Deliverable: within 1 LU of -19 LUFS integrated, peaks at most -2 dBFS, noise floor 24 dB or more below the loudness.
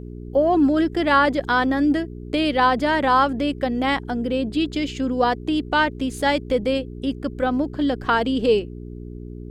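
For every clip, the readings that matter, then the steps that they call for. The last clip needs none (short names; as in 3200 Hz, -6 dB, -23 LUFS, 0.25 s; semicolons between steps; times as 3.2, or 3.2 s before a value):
hum 60 Hz; harmonics up to 420 Hz; hum level -33 dBFS; loudness -21.0 LUFS; peak -6.5 dBFS; loudness target -19.0 LUFS
-> de-hum 60 Hz, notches 7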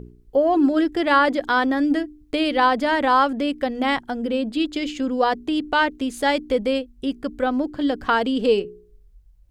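hum none; loudness -21.5 LUFS; peak -6.5 dBFS; loudness target -19.0 LUFS
-> gain +2.5 dB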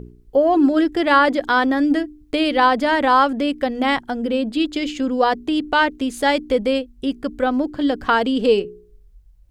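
loudness -19.0 LUFS; peak -4.0 dBFS; noise floor -50 dBFS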